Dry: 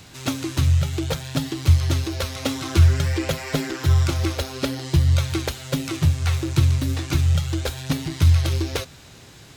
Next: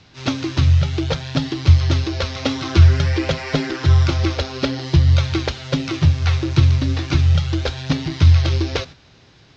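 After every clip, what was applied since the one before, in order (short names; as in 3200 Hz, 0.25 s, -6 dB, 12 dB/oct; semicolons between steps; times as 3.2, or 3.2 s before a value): gate -38 dBFS, range -8 dB; steep low-pass 5700 Hz 36 dB/oct; gain +4 dB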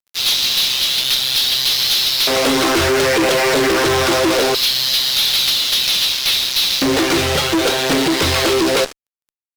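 LFO high-pass square 0.22 Hz 420–3700 Hz; fuzz box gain 37 dB, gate -40 dBFS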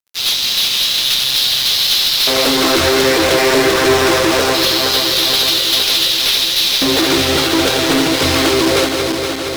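regenerating reverse delay 0.234 s, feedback 80%, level -6 dB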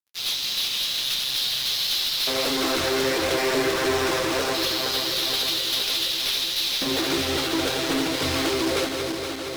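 flange 1.5 Hz, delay 2.3 ms, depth 6.2 ms, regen -63%; gain -6.5 dB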